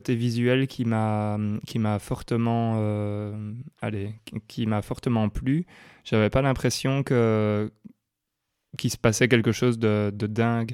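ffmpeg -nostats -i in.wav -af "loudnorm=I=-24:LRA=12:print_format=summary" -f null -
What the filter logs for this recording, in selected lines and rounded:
Input Integrated:    -24.9 LUFS
Input True Peak:      -5.8 dBTP
Input LRA:             4.2 LU
Input Threshold:     -35.3 LUFS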